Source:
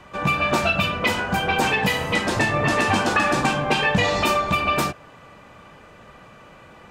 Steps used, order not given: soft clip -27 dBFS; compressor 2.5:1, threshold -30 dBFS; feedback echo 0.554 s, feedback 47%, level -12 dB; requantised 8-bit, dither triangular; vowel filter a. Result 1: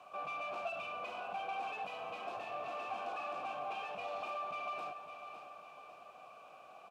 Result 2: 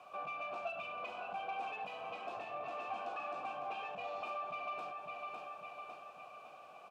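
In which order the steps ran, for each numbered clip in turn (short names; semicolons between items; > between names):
soft clip > feedback echo > compressor > requantised > vowel filter; requantised > feedback echo > compressor > soft clip > vowel filter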